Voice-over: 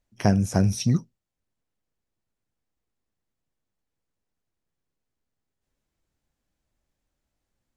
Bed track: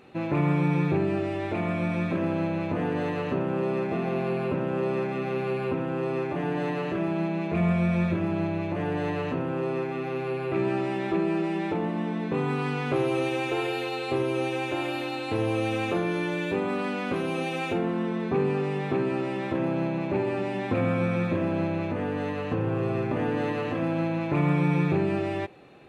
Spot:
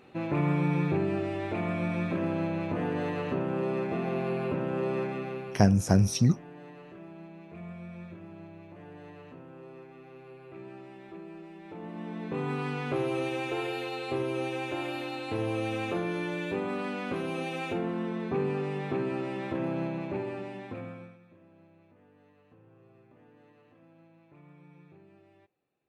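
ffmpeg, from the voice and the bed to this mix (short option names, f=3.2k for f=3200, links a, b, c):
-filter_complex "[0:a]adelay=5350,volume=-1dB[a];[1:a]volume=11.5dB,afade=t=out:st=5.04:d=0.61:silence=0.158489,afade=t=in:st=11.63:d=0.88:silence=0.188365,afade=t=out:st=19.81:d=1.37:silence=0.0446684[b];[a][b]amix=inputs=2:normalize=0"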